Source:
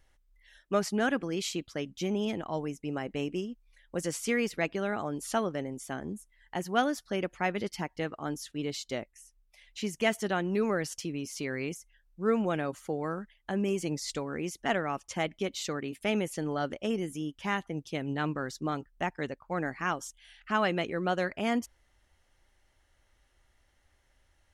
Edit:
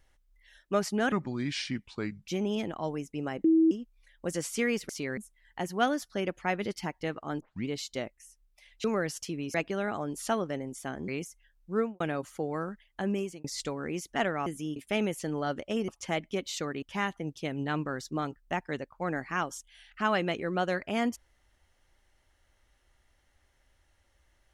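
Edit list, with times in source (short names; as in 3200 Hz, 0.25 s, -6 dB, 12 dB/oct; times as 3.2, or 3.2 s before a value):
1.12–1.98 speed 74%
3.14–3.41 bleep 323 Hz -18.5 dBFS
4.59–6.13 swap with 11.3–11.58
8.36 tape start 0.28 s
9.8–10.6 cut
12.23–12.5 studio fade out
13.61–13.94 fade out
14.96–15.9 swap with 17.02–17.32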